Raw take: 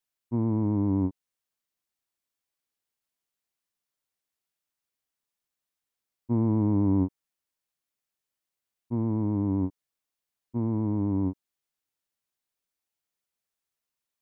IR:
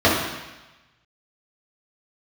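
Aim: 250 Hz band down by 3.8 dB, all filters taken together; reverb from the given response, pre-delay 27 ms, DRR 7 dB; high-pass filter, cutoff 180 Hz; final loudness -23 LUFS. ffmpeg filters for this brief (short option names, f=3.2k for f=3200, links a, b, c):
-filter_complex "[0:a]highpass=180,equalizer=f=250:t=o:g=-3.5,asplit=2[a][b];[1:a]atrim=start_sample=2205,adelay=27[c];[b][c]afir=irnorm=-1:irlink=0,volume=-30.5dB[d];[a][d]amix=inputs=2:normalize=0,volume=6.5dB"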